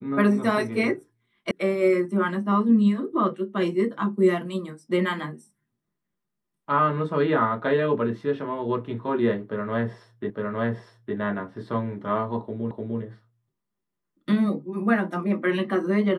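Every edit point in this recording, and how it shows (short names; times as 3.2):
1.51 sound cut off
10.3 repeat of the last 0.86 s
12.71 repeat of the last 0.3 s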